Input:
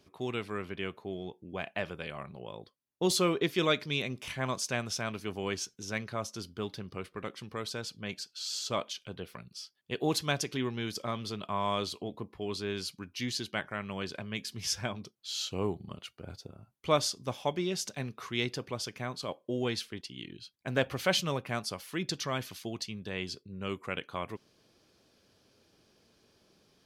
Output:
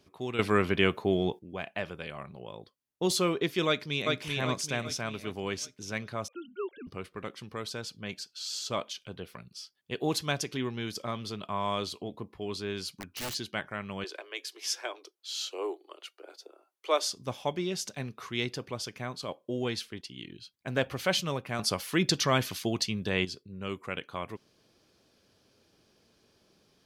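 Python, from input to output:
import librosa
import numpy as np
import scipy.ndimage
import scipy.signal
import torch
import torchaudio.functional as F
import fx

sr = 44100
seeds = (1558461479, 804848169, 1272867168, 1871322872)

y = fx.echo_throw(x, sr, start_s=3.67, length_s=0.55, ms=390, feedback_pct=45, wet_db=-2.0)
y = fx.sine_speech(y, sr, at=(6.28, 6.87))
y = fx.overflow_wrap(y, sr, gain_db=30.5, at=(12.88, 13.33), fade=0.02)
y = fx.steep_highpass(y, sr, hz=320.0, slope=72, at=(14.04, 17.12))
y = fx.edit(y, sr, fx.clip_gain(start_s=0.39, length_s=1.0, db=12.0),
    fx.clip_gain(start_s=21.59, length_s=1.66, db=8.0), tone=tone)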